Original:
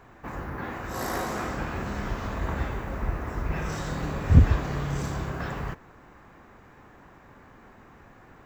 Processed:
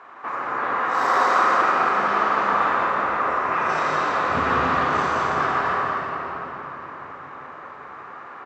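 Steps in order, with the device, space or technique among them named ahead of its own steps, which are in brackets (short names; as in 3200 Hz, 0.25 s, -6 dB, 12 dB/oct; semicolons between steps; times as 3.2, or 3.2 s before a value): station announcement (BPF 490–4000 Hz; bell 1200 Hz +10 dB 0.55 oct; loudspeakers at several distances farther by 58 m -5 dB, 71 m -9 dB; reverb RT60 4.8 s, pre-delay 33 ms, DRR -2 dB); gain +5.5 dB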